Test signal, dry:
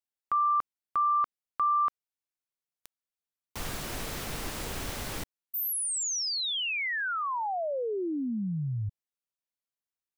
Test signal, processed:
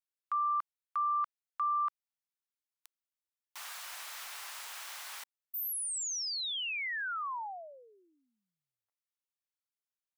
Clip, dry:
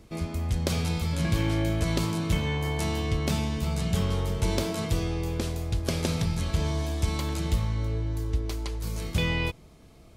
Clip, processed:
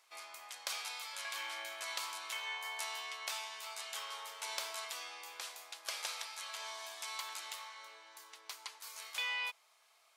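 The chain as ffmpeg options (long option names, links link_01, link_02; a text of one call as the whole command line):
ffmpeg -i in.wav -af "highpass=frequency=880:width=0.5412,highpass=frequency=880:width=1.3066,volume=-5dB" out.wav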